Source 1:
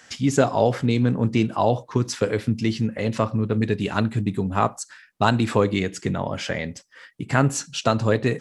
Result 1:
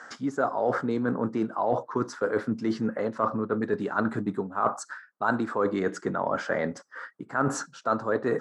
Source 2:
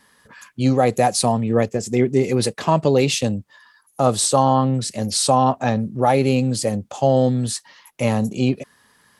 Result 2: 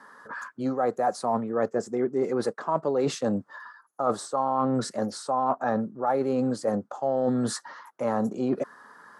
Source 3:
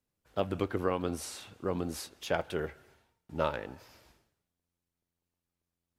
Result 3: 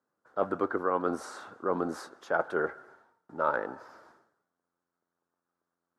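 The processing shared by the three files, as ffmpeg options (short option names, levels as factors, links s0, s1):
-af "highpass=280,highshelf=f=1900:t=q:w=3:g=-10.5,areverse,acompressor=threshold=0.0316:ratio=6,areverse,lowpass=8200,volume=2.11"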